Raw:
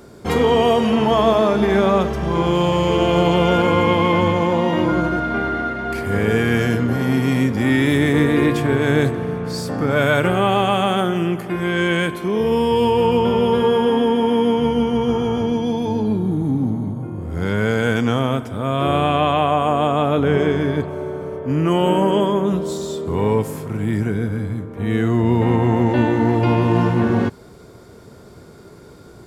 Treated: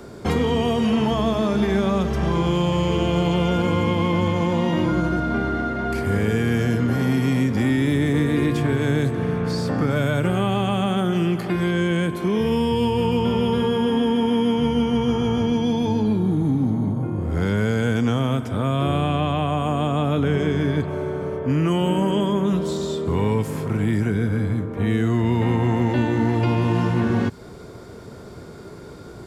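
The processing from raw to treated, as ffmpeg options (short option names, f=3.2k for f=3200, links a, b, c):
-filter_complex "[0:a]asettb=1/sr,asplit=3[a][b][c];[a]atrim=end=11.124[d];[b]atrim=start=11.12:end=11.71,asetpts=PTS-STARTPTS,afade=t=in:d=0.004:c=qsin,afade=t=out:st=0.586:d=0.004:c=qsin,equalizer=f=4.3k:w=3.2:g=8.5[e];[c]atrim=start=11.706[f];[d][e]acrossfade=d=0.004:c1=hsin:c2=qsin[g];[g][f]acrossfade=d=0.004:c1=qsin:c2=hsin,highshelf=f=9.6k:g=-7.5,acrossover=split=270|1200|4300[h][i][j][k];[h]acompressor=threshold=-23dB:ratio=4[l];[i]acompressor=threshold=-31dB:ratio=4[m];[j]acompressor=threshold=-38dB:ratio=4[n];[k]acompressor=threshold=-45dB:ratio=4[o];[l][m][n][o]amix=inputs=4:normalize=0,volume=3.5dB"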